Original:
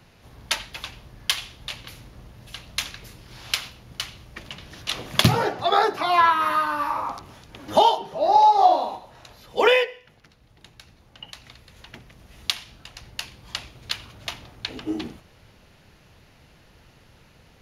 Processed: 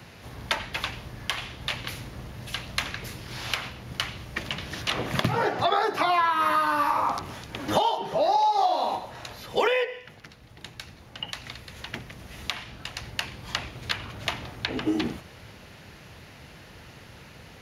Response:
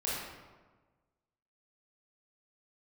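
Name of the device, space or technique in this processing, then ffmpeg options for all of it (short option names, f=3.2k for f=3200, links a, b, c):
mastering chain: -filter_complex "[0:a]highpass=59,equalizer=f=1.9k:t=o:w=0.77:g=2.5,acrossover=split=1200|2600[a][b][c];[a]acompressor=threshold=-27dB:ratio=4[d];[b]acompressor=threshold=-35dB:ratio=4[e];[c]acompressor=threshold=-41dB:ratio=4[f];[d][e][f]amix=inputs=3:normalize=0,acompressor=threshold=-29dB:ratio=2,alimiter=level_in=15dB:limit=-1dB:release=50:level=0:latency=1,volume=-8dB"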